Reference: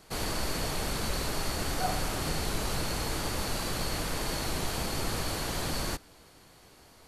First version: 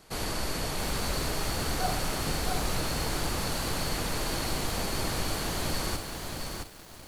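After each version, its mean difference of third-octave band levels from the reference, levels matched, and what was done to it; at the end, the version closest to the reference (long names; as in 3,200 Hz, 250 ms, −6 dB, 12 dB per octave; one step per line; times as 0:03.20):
3.0 dB: feedback echo at a low word length 669 ms, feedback 35%, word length 8 bits, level −4 dB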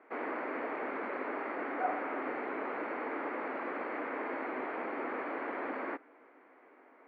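18.0 dB: Chebyshev band-pass filter 260–2,200 Hz, order 4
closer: first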